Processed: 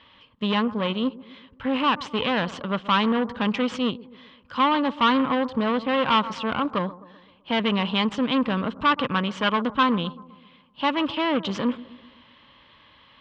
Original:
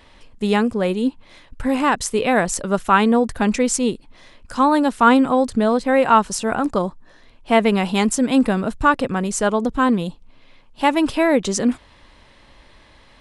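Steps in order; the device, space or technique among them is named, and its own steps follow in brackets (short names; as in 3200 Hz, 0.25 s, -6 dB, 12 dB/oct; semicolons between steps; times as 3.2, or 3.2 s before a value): 8.91–9.83 dynamic EQ 1600 Hz, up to +7 dB, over -34 dBFS, Q 0.84; analogue delay pedal into a guitar amplifier (analogue delay 0.128 s, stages 1024, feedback 54%, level -18 dB; tube stage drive 17 dB, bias 0.75; speaker cabinet 100–4000 Hz, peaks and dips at 380 Hz -7 dB, 710 Hz -8 dB, 1100 Hz +7 dB, 3100 Hz +10 dB)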